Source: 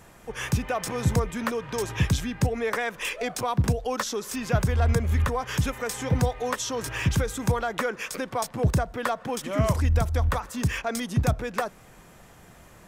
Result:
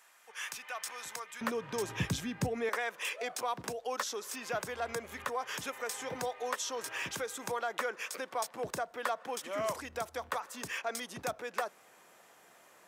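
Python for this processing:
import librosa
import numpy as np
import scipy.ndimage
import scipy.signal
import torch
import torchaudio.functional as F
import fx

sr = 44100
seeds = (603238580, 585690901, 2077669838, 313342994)

y = fx.highpass(x, sr, hz=fx.steps((0.0, 1200.0), (1.41, 150.0), (2.69, 450.0)), slope=12)
y = y * 10.0 ** (-6.0 / 20.0)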